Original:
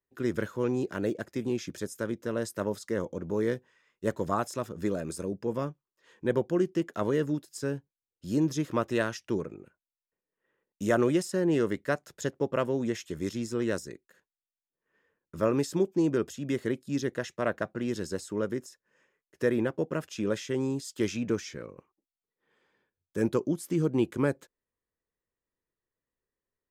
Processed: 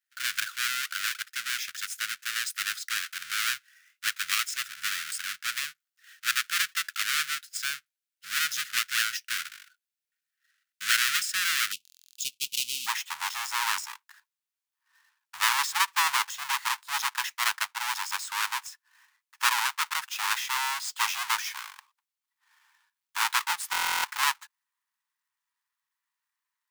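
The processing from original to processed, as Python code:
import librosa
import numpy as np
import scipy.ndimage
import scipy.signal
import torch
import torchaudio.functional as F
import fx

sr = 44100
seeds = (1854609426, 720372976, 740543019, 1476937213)

y = fx.halfwave_hold(x, sr)
y = fx.ellip_highpass(y, sr, hz=fx.steps((0.0, 1400.0), (11.71, 2700.0), (12.86, 910.0)), order=4, stop_db=40)
y = fx.buffer_glitch(y, sr, at_s=(11.83, 23.71), block=1024, repeats=13)
y = F.gain(torch.from_numpy(y), 5.5).numpy()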